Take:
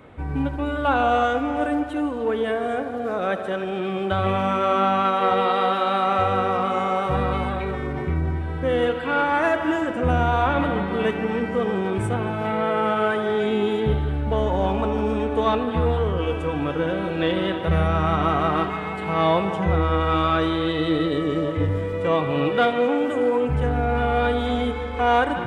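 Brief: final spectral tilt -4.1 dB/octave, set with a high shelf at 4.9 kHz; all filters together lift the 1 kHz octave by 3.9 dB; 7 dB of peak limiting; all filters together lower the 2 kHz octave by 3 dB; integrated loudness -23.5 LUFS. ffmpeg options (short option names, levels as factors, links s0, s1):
-af "equalizer=f=1000:t=o:g=8,equalizer=f=2000:t=o:g=-8.5,highshelf=f=4900:g=-5.5,volume=0.891,alimiter=limit=0.224:level=0:latency=1"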